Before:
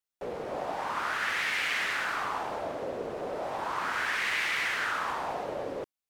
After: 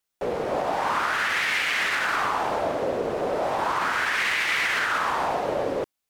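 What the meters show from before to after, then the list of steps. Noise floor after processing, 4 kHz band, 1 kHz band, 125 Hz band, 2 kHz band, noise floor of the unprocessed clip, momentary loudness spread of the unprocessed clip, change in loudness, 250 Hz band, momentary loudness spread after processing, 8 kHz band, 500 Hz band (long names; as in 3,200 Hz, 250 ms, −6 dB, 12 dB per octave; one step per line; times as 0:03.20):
−82 dBFS, +6.0 dB, +7.5 dB, +8.5 dB, +6.0 dB, below −85 dBFS, 8 LU, +6.5 dB, +8.5 dB, 5 LU, +6.0 dB, +8.5 dB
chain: brickwall limiter −24.5 dBFS, peak gain reduction 6 dB
level +9 dB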